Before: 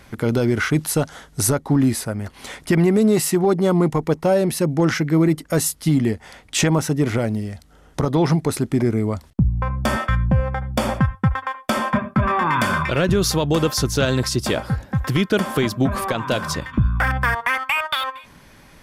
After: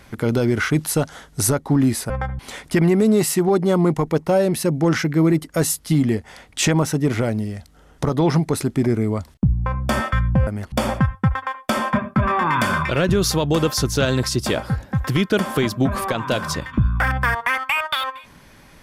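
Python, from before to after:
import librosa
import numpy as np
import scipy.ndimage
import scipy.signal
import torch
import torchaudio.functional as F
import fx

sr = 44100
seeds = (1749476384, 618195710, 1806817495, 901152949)

y = fx.edit(x, sr, fx.swap(start_s=2.1, length_s=0.25, other_s=10.43, other_length_s=0.29), tone=tone)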